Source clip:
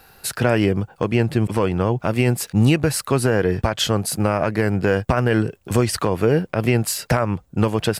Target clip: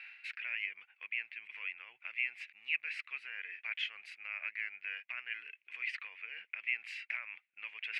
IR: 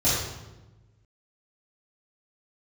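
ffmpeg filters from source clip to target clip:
-af "areverse,acompressor=threshold=-32dB:ratio=8,areverse,asuperpass=centerf=2300:order=4:qfactor=3.6,volume=14dB"

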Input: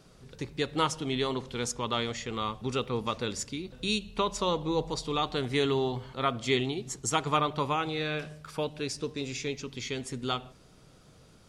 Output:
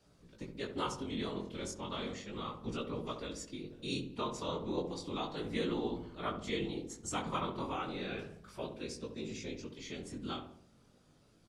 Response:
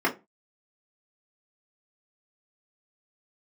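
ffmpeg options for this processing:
-filter_complex "[0:a]afftfilt=real='hypot(re,im)*cos(2*PI*random(0))':imag='hypot(re,im)*sin(2*PI*random(1))':win_size=512:overlap=0.75,asplit=2[a][b];[b]adelay=190,highpass=300,lowpass=3.4k,asoftclip=type=hard:threshold=-26dB,volume=-29dB[c];[a][c]amix=inputs=2:normalize=0,flanger=delay=17:depth=6.9:speed=0.34,asplit=2[d][e];[e]adelay=68,lowpass=f=940:p=1,volume=-6dB,asplit=2[f][g];[g]adelay=68,lowpass=f=940:p=1,volume=0.54,asplit=2[h][i];[i]adelay=68,lowpass=f=940:p=1,volume=0.54,asplit=2[j][k];[k]adelay=68,lowpass=f=940:p=1,volume=0.54,asplit=2[l][m];[m]adelay=68,lowpass=f=940:p=1,volume=0.54,asplit=2[n][o];[o]adelay=68,lowpass=f=940:p=1,volume=0.54,asplit=2[p][q];[q]adelay=68,lowpass=f=940:p=1,volume=0.54[r];[f][h][j][l][n][p][r]amix=inputs=7:normalize=0[s];[d][s]amix=inputs=2:normalize=0,adynamicequalizer=threshold=0.00224:dfrequency=250:dqfactor=1.3:tfrequency=250:tqfactor=1.3:attack=5:release=100:ratio=0.375:range=2:mode=boostabove:tftype=bell,volume=-1.5dB"

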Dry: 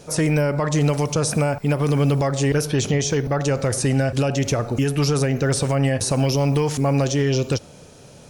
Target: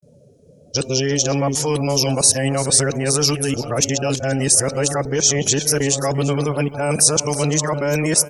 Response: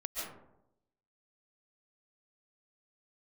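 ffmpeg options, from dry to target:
-af "areverse,afftdn=nr=31:nf=-38,bass=f=250:g=-5,treble=f=4k:g=12,aecho=1:1:343:0.168,volume=1.5dB"

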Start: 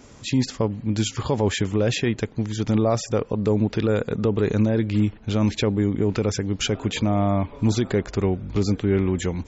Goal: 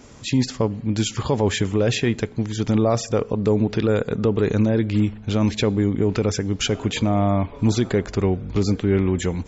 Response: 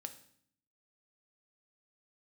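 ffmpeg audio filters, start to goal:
-filter_complex "[0:a]asplit=2[a][b];[1:a]atrim=start_sample=2205,asetrate=37044,aresample=44100[c];[b][c]afir=irnorm=-1:irlink=0,volume=-9.5dB[d];[a][d]amix=inputs=2:normalize=0"

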